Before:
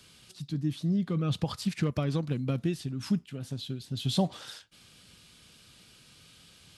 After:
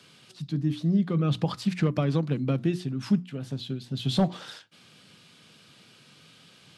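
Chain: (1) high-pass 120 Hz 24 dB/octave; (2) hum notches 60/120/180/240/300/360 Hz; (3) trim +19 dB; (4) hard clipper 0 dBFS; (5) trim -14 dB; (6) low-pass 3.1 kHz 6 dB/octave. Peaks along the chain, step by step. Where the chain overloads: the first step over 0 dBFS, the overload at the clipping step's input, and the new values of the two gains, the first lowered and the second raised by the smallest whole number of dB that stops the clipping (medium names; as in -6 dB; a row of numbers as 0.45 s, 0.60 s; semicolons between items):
-13.0 dBFS, -14.0 dBFS, +5.0 dBFS, 0.0 dBFS, -14.0 dBFS, -14.0 dBFS; step 3, 5.0 dB; step 3 +14 dB, step 5 -9 dB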